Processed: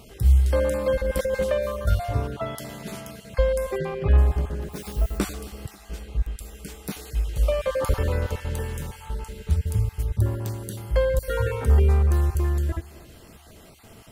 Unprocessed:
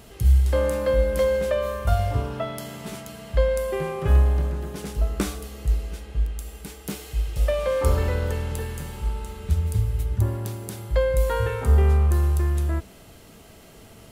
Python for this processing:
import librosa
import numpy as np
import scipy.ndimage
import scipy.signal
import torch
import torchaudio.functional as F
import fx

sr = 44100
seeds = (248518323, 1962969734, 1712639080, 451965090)

y = fx.spec_dropout(x, sr, seeds[0], share_pct=21)
y = fx.over_compress(y, sr, threshold_db=-24.0, ratio=-1.0, at=(0.95, 1.42), fade=0.02)
y = fx.lowpass(y, sr, hz=fx.line((3.77, 6800.0), (4.17, 3600.0)), slope=24, at=(3.77, 4.17), fade=0.02)
y = fx.dmg_noise_colour(y, sr, seeds[1], colour='violet', level_db=-47.0, at=(4.72, 5.17), fade=0.02)
y = fx.echo_feedback(y, sr, ms=270, feedback_pct=53, wet_db=-21)